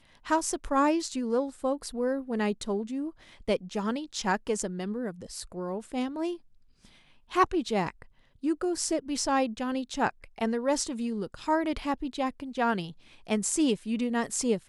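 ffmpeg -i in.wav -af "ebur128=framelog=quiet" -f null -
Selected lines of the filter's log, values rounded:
Integrated loudness:
  I:         -30.0 LUFS
  Threshold: -40.3 LUFS
Loudness range:
  LRA:         3.4 LU
  Threshold: -50.8 LUFS
  LRA low:   -32.8 LUFS
  LRA high:  -29.4 LUFS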